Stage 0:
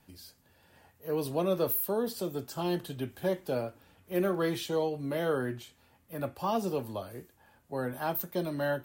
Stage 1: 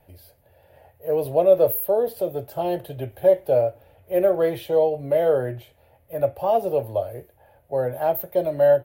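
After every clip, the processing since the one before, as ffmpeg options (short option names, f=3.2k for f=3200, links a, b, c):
-af "firequalizer=gain_entry='entry(120,0);entry(200,-15);entry(580,8);entry(1100,-12);entry(2100,-6);entry(5100,-18);entry(7700,-20);entry(11000,-5)':delay=0.05:min_phase=1,volume=9dB"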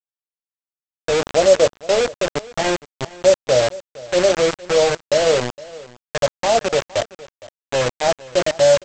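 -af "aresample=16000,acrusher=bits=3:mix=0:aa=0.000001,aresample=44100,aecho=1:1:463:0.1,volume=3dB"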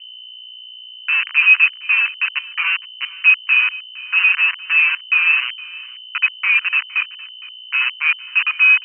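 -af "aeval=exprs='val(0)+0.0141*(sin(2*PI*60*n/s)+sin(2*PI*2*60*n/s)/2+sin(2*PI*3*60*n/s)/3+sin(2*PI*4*60*n/s)/4+sin(2*PI*5*60*n/s)/5)':c=same,lowpass=f=2.6k:t=q:w=0.5098,lowpass=f=2.6k:t=q:w=0.6013,lowpass=f=2.6k:t=q:w=0.9,lowpass=f=2.6k:t=q:w=2.563,afreqshift=-3100,asuperpass=centerf=2100:order=12:qfactor=0.64,volume=1dB"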